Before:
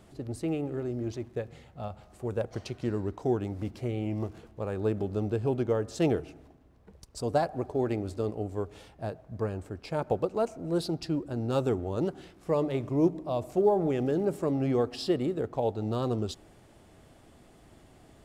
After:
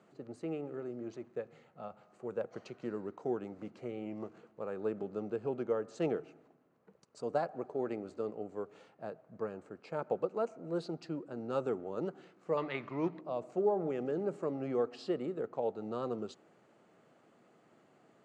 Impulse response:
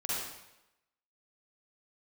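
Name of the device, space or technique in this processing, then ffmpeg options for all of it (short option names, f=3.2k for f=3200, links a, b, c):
television speaker: -filter_complex "[0:a]asettb=1/sr,asplit=3[a][b][c];[a]atrim=end=12.574[d];[b]atrim=start=12.57:end=13.21,asetpts=PTS-STARTPTS,afade=t=in:d=0.004:c=qsin,afade=t=out:st=0.636:d=0.004:c=qsin,equalizer=f=500:t=o:w=1:g=-6,equalizer=f=1k:t=o:w=1:g=5,equalizer=f=2k:t=o:w=1:g=12,equalizer=f=4k:t=o:w=1:g=11,equalizer=f=8k:t=o:w=1:g=-9[e];[c]atrim=start=13.206[f];[d][e]acrossfade=d=0.004:c1=hsin:c2=qsin[g];[g][f]acrossfade=d=0.004:c1=qsin:c2=hsin,highpass=f=160:w=0.5412,highpass=f=160:w=1.3066,equalizer=f=280:t=q:w=4:g=-3,equalizer=f=490:t=q:w=4:g=4,equalizer=f=1.3k:t=q:w=4:g=6,equalizer=f=3.5k:t=q:w=4:g=-7,equalizer=f=5.3k:t=q:w=4:g=-9,lowpass=f=6.8k:w=0.5412,lowpass=f=6.8k:w=1.3066,volume=-7.5dB"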